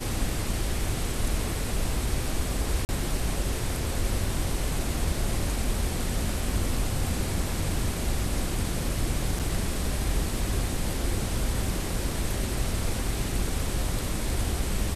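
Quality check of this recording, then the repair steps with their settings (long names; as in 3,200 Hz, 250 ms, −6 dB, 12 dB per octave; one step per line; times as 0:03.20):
0:02.85–0:02.89: drop-out 39 ms
0:09.39–0:09.40: drop-out 7.3 ms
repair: repair the gap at 0:02.85, 39 ms
repair the gap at 0:09.39, 7.3 ms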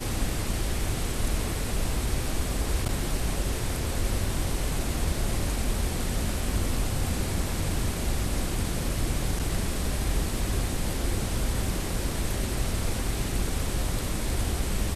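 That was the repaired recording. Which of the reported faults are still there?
none of them is left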